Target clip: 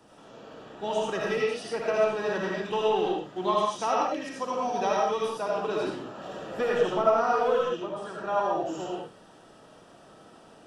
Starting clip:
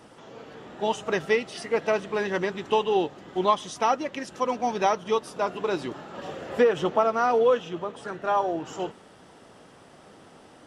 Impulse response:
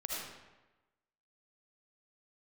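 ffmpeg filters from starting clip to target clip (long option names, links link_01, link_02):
-filter_complex "[0:a]bandreject=frequency=2100:width=5.7,acrossover=split=120|660|1900[link_01][link_02][link_03][link_04];[link_02]asoftclip=type=hard:threshold=-21.5dB[link_05];[link_01][link_05][link_03][link_04]amix=inputs=4:normalize=0[link_06];[1:a]atrim=start_sample=2205,afade=type=out:start_time=0.26:duration=0.01,atrim=end_sample=11907[link_07];[link_06][link_07]afir=irnorm=-1:irlink=0,volume=-3dB"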